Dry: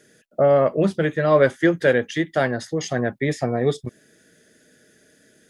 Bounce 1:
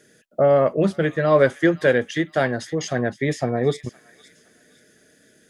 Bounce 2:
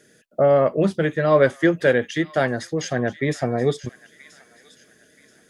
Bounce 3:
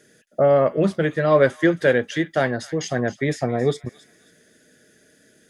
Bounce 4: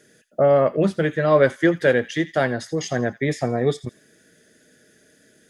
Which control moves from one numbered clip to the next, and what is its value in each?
delay with a high-pass on its return, delay time: 515, 979, 270, 84 milliseconds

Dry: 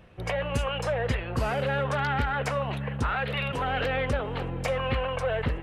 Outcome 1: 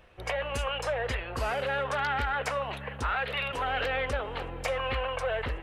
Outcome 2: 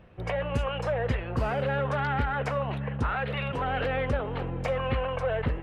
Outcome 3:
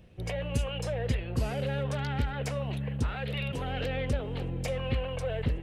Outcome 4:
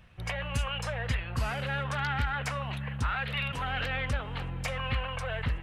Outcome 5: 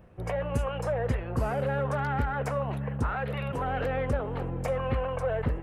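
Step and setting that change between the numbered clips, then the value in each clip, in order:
parametric band, centre frequency: 160, 16,000, 1,200, 420, 3,500 Hertz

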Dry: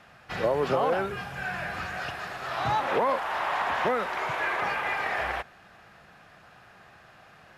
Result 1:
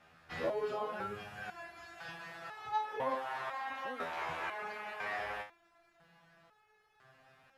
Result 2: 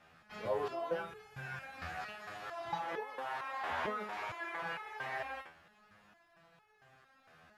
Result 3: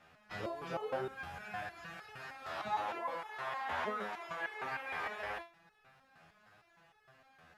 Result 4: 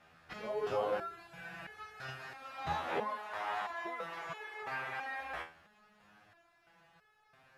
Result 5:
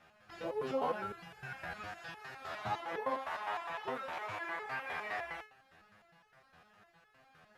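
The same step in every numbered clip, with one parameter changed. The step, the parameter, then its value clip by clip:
step-sequenced resonator, speed: 2, 4.4, 6.5, 3, 9.8 Hertz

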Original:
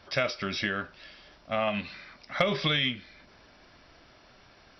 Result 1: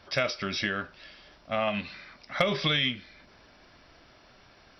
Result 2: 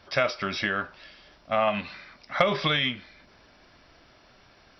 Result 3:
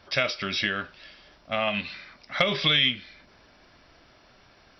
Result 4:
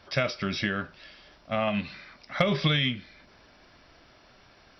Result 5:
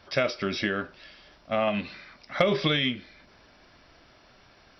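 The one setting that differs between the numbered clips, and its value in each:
dynamic equaliser, frequency: 9,600, 970, 3,200, 140, 350 Hertz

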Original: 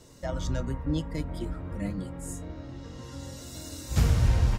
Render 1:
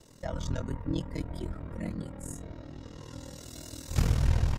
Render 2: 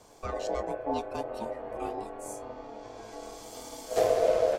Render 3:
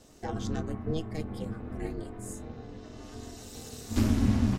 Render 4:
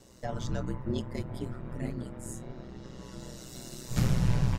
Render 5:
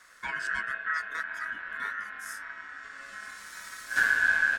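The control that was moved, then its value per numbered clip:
ring modulation, frequency: 20, 570, 160, 62, 1,600 Hertz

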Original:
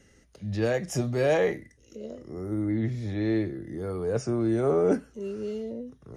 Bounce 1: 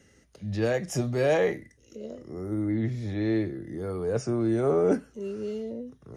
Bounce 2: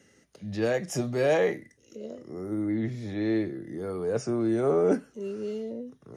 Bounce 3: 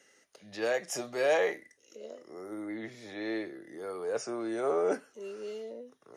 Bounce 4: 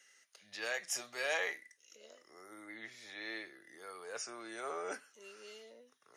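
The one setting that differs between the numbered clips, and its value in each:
high-pass filter, corner frequency: 56, 140, 540, 1,400 Hertz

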